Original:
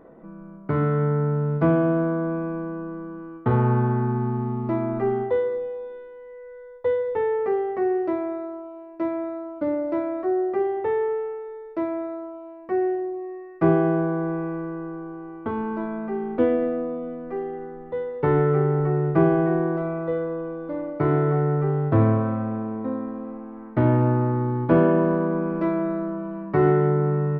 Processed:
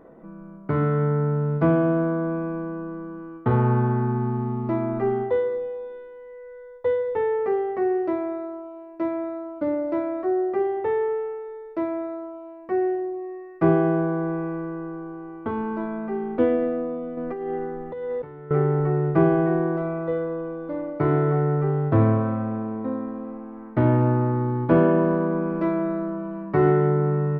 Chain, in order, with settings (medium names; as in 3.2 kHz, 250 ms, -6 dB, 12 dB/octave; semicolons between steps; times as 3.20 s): 17.17–18.51 s: compressor with a negative ratio -32 dBFS, ratio -1